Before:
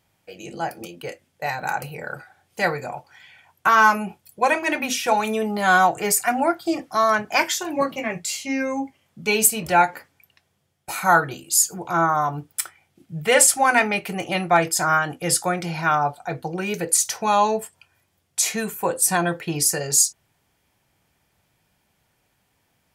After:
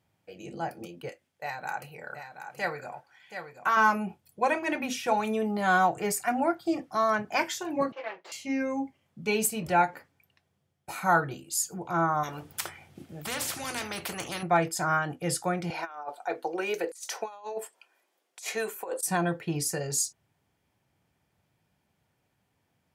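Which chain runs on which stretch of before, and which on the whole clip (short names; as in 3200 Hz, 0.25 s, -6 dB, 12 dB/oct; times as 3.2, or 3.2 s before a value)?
1.09–3.77 low shelf 420 Hz -11 dB + echo 0.727 s -8.5 dB
7.92–8.32 minimum comb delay 5.9 ms + HPF 430 Hz 24 dB/oct + air absorption 240 m
12.23–14.43 HPF 42 Hz + spectral compressor 4:1
15.7–19.03 HPF 350 Hz 24 dB/oct + negative-ratio compressor -26 dBFS, ratio -0.5
whole clip: HPF 83 Hz; tilt -1.5 dB/oct; gain -7 dB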